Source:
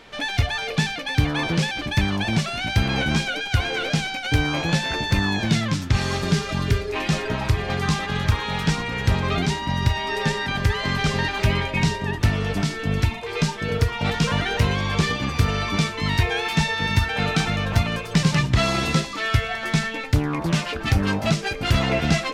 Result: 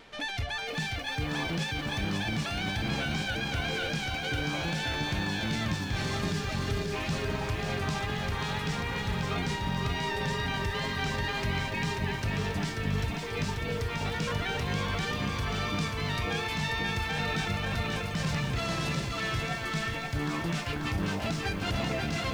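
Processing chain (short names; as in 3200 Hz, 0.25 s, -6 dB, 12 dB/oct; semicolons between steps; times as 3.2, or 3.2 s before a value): limiter -15.5 dBFS, peak gain reduction 9 dB; reverse; upward compressor, threshold -29 dBFS; reverse; wow and flutter 22 cents; lo-fi delay 0.537 s, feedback 55%, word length 8-bit, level -4 dB; gain -7.5 dB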